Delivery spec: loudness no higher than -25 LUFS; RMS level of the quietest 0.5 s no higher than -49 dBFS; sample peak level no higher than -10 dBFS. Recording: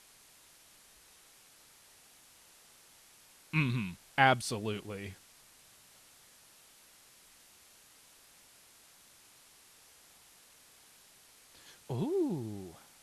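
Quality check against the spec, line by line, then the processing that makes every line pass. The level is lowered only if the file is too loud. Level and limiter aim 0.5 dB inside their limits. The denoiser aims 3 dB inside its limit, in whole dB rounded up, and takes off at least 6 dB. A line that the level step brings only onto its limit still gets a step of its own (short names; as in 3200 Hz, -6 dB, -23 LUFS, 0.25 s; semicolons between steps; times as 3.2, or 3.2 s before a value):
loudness -33.0 LUFS: OK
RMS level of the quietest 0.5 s -61 dBFS: OK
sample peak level -11.0 dBFS: OK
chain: none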